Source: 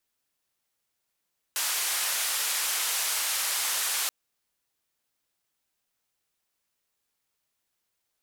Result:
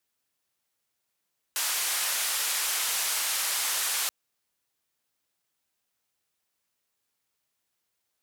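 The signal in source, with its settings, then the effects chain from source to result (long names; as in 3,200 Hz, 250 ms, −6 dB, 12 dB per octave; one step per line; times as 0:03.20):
band-limited noise 860–13,000 Hz, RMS −28.5 dBFS 2.53 s
wavefolder on the positive side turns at −20 dBFS
high-pass filter 50 Hz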